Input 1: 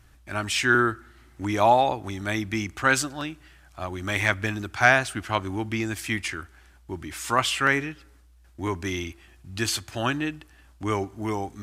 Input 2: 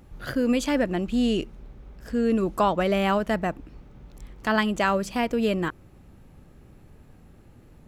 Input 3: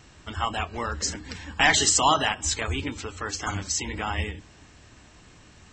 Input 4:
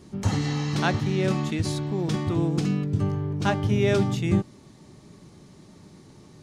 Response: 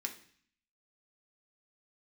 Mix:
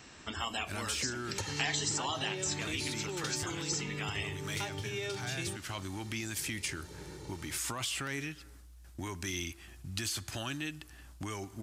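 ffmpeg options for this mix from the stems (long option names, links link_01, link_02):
-filter_complex "[0:a]bass=frequency=250:gain=7,treble=frequency=4000:gain=6,acontrast=62,alimiter=limit=-12dB:level=0:latency=1:release=13,adelay=400,volume=-7dB[link_01];[2:a]volume=-2dB,asplit=2[link_02][link_03];[link_03]volume=-5dB[link_04];[3:a]aecho=1:1:2.2:0.82,adelay=1150,volume=3dB[link_05];[link_01][link_05]amix=inputs=2:normalize=0,acompressor=threshold=-23dB:ratio=6,volume=0dB[link_06];[4:a]atrim=start_sample=2205[link_07];[link_04][link_07]afir=irnorm=-1:irlink=0[link_08];[link_02][link_06][link_08]amix=inputs=3:normalize=0,lowshelf=frequency=65:gain=-9,acrossover=split=930|2500[link_09][link_10][link_11];[link_09]acompressor=threshold=-40dB:ratio=4[link_12];[link_10]acompressor=threshold=-47dB:ratio=4[link_13];[link_11]acompressor=threshold=-35dB:ratio=4[link_14];[link_12][link_13][link_14]amix=inputs=3:normalize=0"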